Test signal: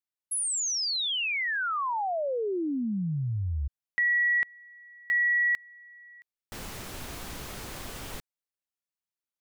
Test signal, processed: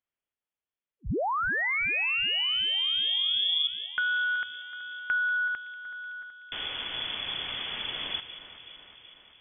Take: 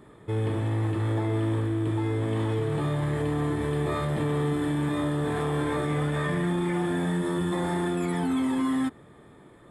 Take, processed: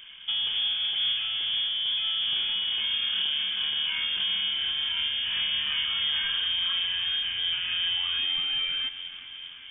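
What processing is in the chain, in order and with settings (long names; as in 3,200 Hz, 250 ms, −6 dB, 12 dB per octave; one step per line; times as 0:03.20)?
in parallel at −3 dB: brickwall limiter −29 dBFS
on the sum: downward compressor, threshold −26 dBFS
delay that swaps between a low-pass and a high-pass 188 ms, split 1,200 Hz, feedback 79%, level −11 dB
voice inversion scrambler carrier 3,400 Hz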